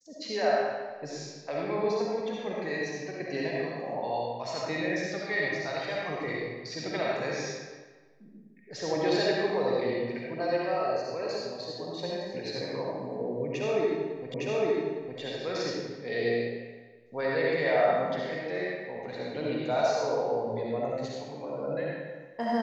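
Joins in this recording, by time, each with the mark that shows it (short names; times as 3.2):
14.34 repeat of the last 0.86 s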